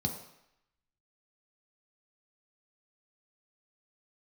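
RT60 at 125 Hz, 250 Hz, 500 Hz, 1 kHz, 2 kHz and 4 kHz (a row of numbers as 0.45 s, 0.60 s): 0.65 s, 0.65 s, 0.75 s, 0.85 s, 0.90 s, 0.80 s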